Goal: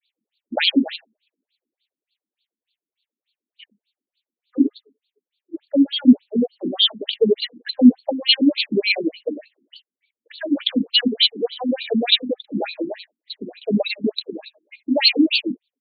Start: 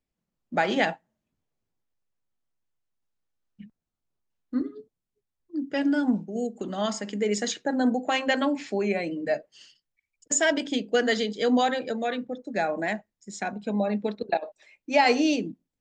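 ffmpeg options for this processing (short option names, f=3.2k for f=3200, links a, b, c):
-filter_complex "[0:a]aexciter=amount=9.6:drive=5.6:freq=2k,equalizer=f=125:t=o:w=1:g=-11,equalizer=f=250:t=o:w=1:g=9,equalizer=f=500:t=o:w=1:g=7,equalizer=f=1k:t=o:w=1:g=-4,equalizer=f=2k:t=o:w=1:g=-5,equalizer=f=4k:t=o:w=1:g=9,asplit=2[a][b];[b]aecho=0:1:112:0.0668[c];[a][c]amix=inputs=2:normalize=0,adynamicequalizer=threshold=0.02:dfrequency=210:dqfactor=0.71:tfrequency=210:tqfactor=0.71:attack=5:release=100:ratio=0.375:range=3.5:mode=boostabove:tftype=bell,asettb=1/sr,asplit=3[d][e][f];[d]atrim=end=10.464[g];[e]atrim=start=10.46:end=11.14,asetpts=PTS-STARTPTS,afade=t=in:d=0.004:c=qsin,afade=t=out:st=0.676:d=0.004:c=qsin,adynamicsmooth=sensitivity=1.5:basefreq=1k[h];[f]atrim=start=11.136[i];[g][h]acrossfade=d=0.004:c1=hsin:c2=qsin[j];[j][i]acrossfade=d=0.004:c1=qsin:c2=hsin,alimiter=limit=-3dB:level=0:latency=1:release=94,asettb=1/sr,asplit=3[k][l][m];[k]atrim=end=11.954[n];[l]atrim=start=11.95:end=12.92,asetpts=PTS-STARTPTS,afade=t=in:d=0.004:c=qsin,afade=t=out:st=0.966:d=0.004:c=qsin,asplit=2[o][p];[p]adelay=47,volume=-11.5dB[q];[o][q]amix=inputs=2:normalize=0,atrim=end_sample=42777[r];[m]atrim=start=12.916[s];[n][r]acrossfade=d=0.004:c1=hsin:c2=qsin[t];[t][s]acrossfade=d=0.004:c1=qsin:c2=hsin,afftfilt=real='re*between(b*sr/1024,240*pow(3300/240,0.5+0.5*sin(2*PI*3.4*pts/sr))/1.41,240*pow(3300/240,0.5+0.5*sin(2*PI*3.4*pts/sr))*1.41)':imag='im*between(b*sr/1024,240*pow(3300/240,0.5+0.5*sin(2*PI*3.4*pts/sr))/1.41,240*pow(3300/240,0.5+0.5*sin(2*PI*3.4*pts/sr))*1.41)':win_size=1024:overlap=0.75,volume=2dB"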